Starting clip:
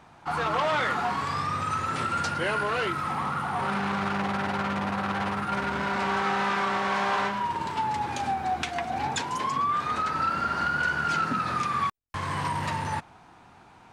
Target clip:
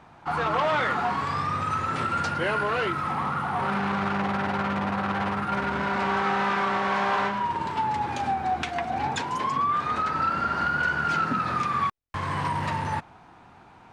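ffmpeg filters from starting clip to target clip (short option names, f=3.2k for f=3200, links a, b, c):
-af "highshelf=f=4.7k:g=-9,volume=2dB"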